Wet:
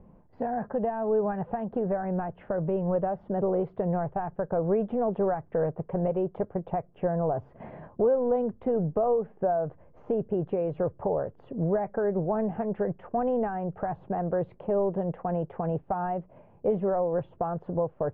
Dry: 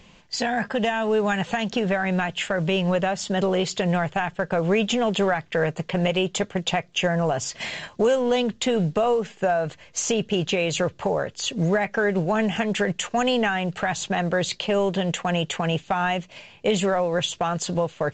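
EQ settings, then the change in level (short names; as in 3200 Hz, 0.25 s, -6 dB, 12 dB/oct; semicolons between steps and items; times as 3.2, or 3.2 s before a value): Bessel low-pass 660 Hz, order 4; dynamic EQ 200 Hz, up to -6 dB, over -37 dBFS, Q 0.89; 0.0 dB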